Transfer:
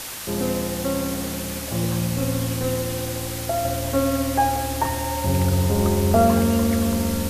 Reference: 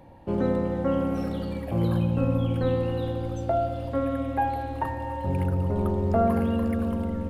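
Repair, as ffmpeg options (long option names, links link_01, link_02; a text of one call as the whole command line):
ffmpeg -i in.wav -af "afwtdn=0.025,asetnsamples=nb_out_samples=441:pad=0,asendcmd='3.65 volume volume -5.5dB',volume=0dB" out.wav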